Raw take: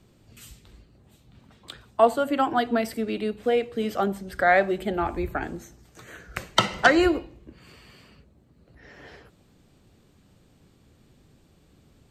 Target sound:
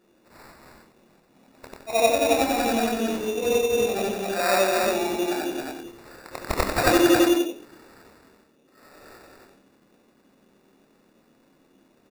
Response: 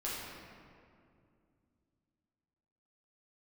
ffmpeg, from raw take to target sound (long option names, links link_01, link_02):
-filter_complex "[0:a]afftfilt=real='re':imag='-im':win_size=8192:overlap=0.75,highpass=frequency=230:width=0.5412,highpass=frequency=230:width=1.3066,equalizer=frequency=1200:width=1.7:gain=-13,bandreject=frequency=60:width_type=h:width=6,bandreject=frequency=120:width_type=h:width=6,bandreject=frequency=180:width_type=h:width=6,bandreject=frequency=240:width_type=h:width=6,bandreject=frequency=300:width_type=h:width=6,bandreject=frequency=360:width_type=h:width=6,bandreject=frequency=420:width_type=h:width=6,asplit=2[link_01][link_02];[link_02]adelay=26,volume=-5dB[link_03];[link_01][link_03]amix=inputs=2:normalize=0,asplit=2[link_04][link_05];[link_05]aecho=0:1:163.3|271.1:0.316|0.708[link_06];[link_04][link_06]amix=inputs=2:normalize=0,acrusher=samples=14:mix=1:aa=0.000001,volume=5.5dB"